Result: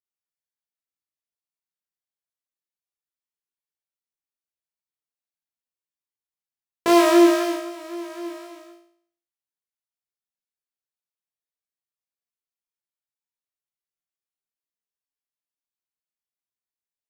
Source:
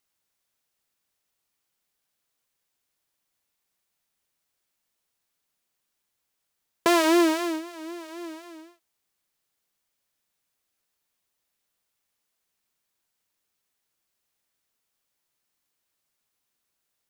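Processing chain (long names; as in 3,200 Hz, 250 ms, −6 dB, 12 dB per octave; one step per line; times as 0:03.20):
noise gate with hold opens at −42 dBFS
flutter between parallel walls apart 3 metres, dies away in 0.59 s
level −3 dB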